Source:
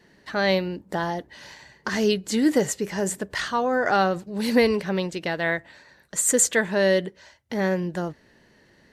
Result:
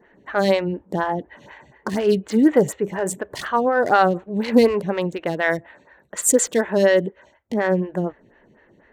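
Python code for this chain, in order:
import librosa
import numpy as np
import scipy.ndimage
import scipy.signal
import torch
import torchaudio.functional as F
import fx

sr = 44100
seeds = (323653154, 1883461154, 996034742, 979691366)

y = fx.wiener(x, sr, points=9)
y = fx.stagger_phaser(y, sr, hz=4.1)
y = F.gain(torch.from_numpy(y), 6.5).numpy()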